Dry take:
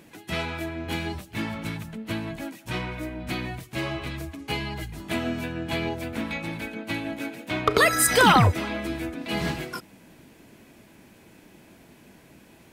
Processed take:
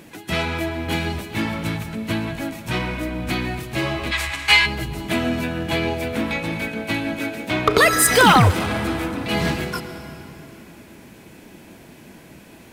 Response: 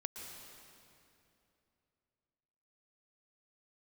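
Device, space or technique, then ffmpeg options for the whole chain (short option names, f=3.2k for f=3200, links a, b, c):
saturated reverb return: -filter_complex "[0:a]asplit=2[a][b];[1:a]atrim=start_sample=2205[c];[b][c]afir=irnorm=-1:irlink=0,asoftclip=type=tanh:threshold=-27dB,volume=0.5dB[d];[a][d]amix=inputs=2:normalize=0,asplit=3[e][f][g];[e]afade=t=out:st=4.11:d=0.02[h];[f]equalizer=f=125:t=o:w=1:g=-9,equalizer=f=250:t=o:w=1:g=-11,equalizer=f=500:t=o:w=1:g=-6,equalizer=f=1k:t=o:w=1:g=7,equalizer=f=2k:t=o:w=1:g=12,equalizer=f=4k:t=o:w=1:g=8,equalizer=f=8k:t=o:w=1:g=10,afade=t=in:st=4.11:d=0.02,afade=t=out:st=4.65:d=0.02[i];[g]afade=t=in:st=4.65:d=0.02[j];[h][i][j]amix=inputs=3:normalize=0,volume=2.5dB"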